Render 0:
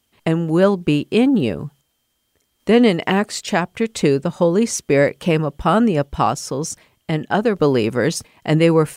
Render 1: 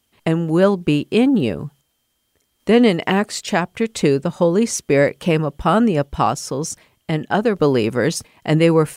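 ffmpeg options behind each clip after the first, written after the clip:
-af "equalizer=f=11k:t=o:w=0.24:g=2"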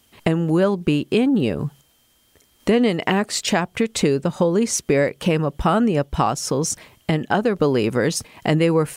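-af "acompressor=threshold=-30dB:ratio=2.5,volume=9dB"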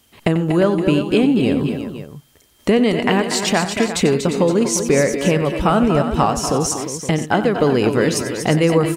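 -af "aecho=1:1:92|238|241|351|518:0.224|0.266|0.316|0.282|0.211,volume=2dB"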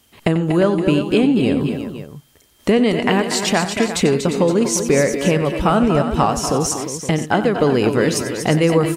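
-ar 44100 -c:a wmav2 -b:a 128k

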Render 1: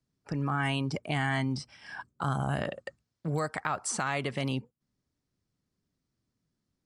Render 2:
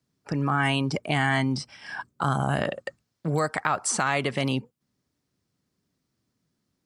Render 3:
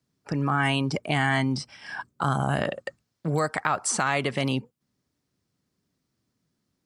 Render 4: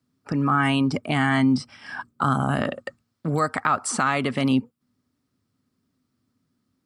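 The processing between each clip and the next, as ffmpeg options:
-af "highpass=f=120:p=1,volume=6.5dB"
-af anull
-af "equalizer=f=100:t=o:w=0.33:g=7,equalizer=f=250:t=o:w=0.33:g=11,equalizer=f=1.25k:t=o:w=0.33:g=7,equalizer=f=6.3k:t=o:w=0.33:g=-4"

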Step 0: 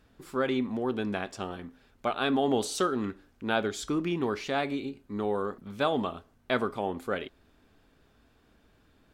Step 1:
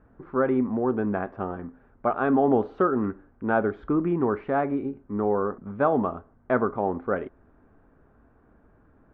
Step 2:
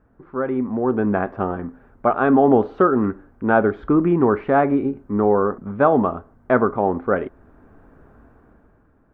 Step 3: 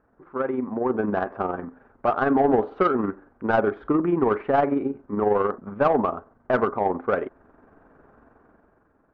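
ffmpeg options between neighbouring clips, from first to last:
-af "lowpass=f=1.5k:w=0.5412,lowpass=f=1.5k:w=1.3066,volume=5.5dB"
-af "dynaudnorm=f=170:g=11:m=14.5dB,volume=-1.5dB"
-filter_complex "[0:a]asplit=2[a][b];[b]highpass=f=720:p=1,volume=15dB,asoftclip=type=tanh:threshold=-2dB[c];[a][c]amix=inputs=2:normalize=0,lowpass=f=1.2k:p=1,volume=-6dB,tremolo=f=22:d=0.462,volume=-4.5dB"

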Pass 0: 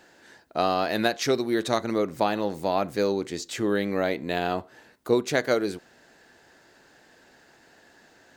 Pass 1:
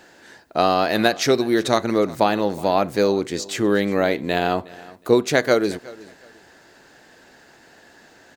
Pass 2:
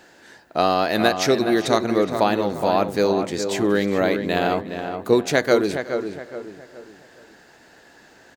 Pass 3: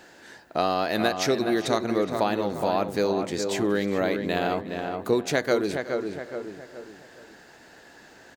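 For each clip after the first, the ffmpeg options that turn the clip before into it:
-af "aecho=1:1:365|730:0.0891|0.0205,volume=6dB"
-filter_complex "[0:a]asplit=2[a][b];[b]adelay=418,lowpass=f=2.2k:p=1,volume=-7dB,asplit=2[c][d];[d]adelay=418,lowpass=f=2.2k:p=1,volume=0.38,asplit=2[e][f];[f]adelay=418,lowpass=f=2.2k:p=1,volume=0.38,asplit=2[g][h];[h]adelay=418,lowpass=f=2.2k:p=1,volume=0.38[i];[a][c][e][g][i]amix=inputs=5:normalize=0,volume=-1dB"
-af "acompressor=threshold=-29dB:ratio=1.5"

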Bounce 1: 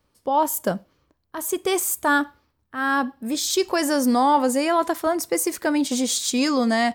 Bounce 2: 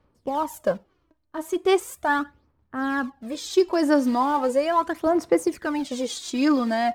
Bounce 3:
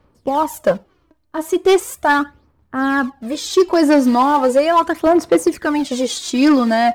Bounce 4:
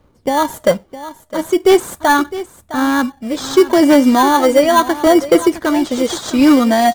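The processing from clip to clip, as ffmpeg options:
-af "acrusher=bits=5:mode=log:mix=0:aa=0.000001,aemphasis=mode=reproduction:type=75kf,aphaser=in_gain=1:out_gain=1:delay=3.3:decay=0.59:speed=0.38:type=sinusoidal,volume=-3dB"
-af "asoftclip=type=hard:threshold=-15dB,volume=8.5dB"
-filter_complex "[0:a]asplit=2[a][b];[b]acrusher=samples=17:mix=1:aa=0.000001,volume=-4dB[c];[a][c]amix=inputs=2:normalize=0,aecho=1:1:660:0.188,volume=-1dB"

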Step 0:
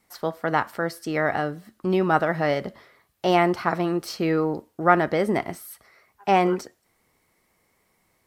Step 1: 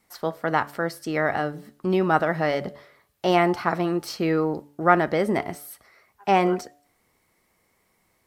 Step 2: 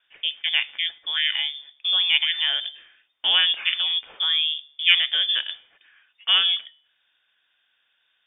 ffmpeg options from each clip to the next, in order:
-af "bandreject=f=144.4:t=h:w=4,bandreject=f=288.8:t=h:w=4,bandreject=f=433.2:t=h:w=4,bandreject=f=577.6:t=h:w=4,bandreject=f=722:t=h:w=4,bandreject=f=866.4:t=h:w=4"
-af "lowpass=f=3.1k:t=q:w=0.5098,lowpass=f=3.1k:t=q:w=0.6013,lowpass=f=3.1k:t=q:w=0.9,lowpass=f=3.1k:t=q:w=2.563,afreqshift=-3700"

